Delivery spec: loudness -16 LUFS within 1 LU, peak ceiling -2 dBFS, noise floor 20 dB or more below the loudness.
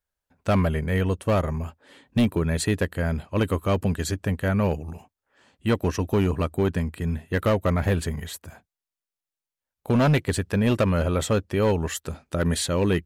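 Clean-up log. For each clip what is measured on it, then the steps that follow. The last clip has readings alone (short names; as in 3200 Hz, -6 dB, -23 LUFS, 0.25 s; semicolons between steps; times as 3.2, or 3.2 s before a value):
clipped 1.6%; flat tops at -15.0 dBFS; loudness -24.5 LUFS; peak -15.0 dBFS; loudness target -16.0 LUFS
-> clip repair -15 dBFS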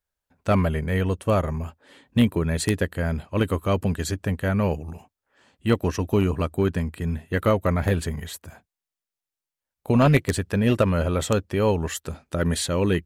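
clipped 0.0%; loudness -24.0 LUFS; peak -6.0 dBFS; loudness target -16.0 LUFS
-> gain +8 dB; limiter -2 dBFS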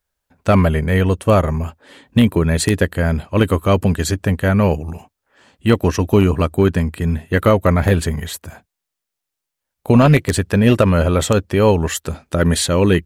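loudness -16.5 LUFS; peak -2.0 dBFS; noise floor -81 dBFS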